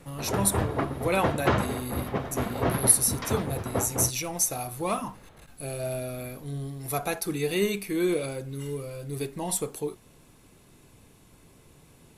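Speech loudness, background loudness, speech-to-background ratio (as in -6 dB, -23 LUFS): -28.5 LUFS, -30.5 LUFS, 2.0 dB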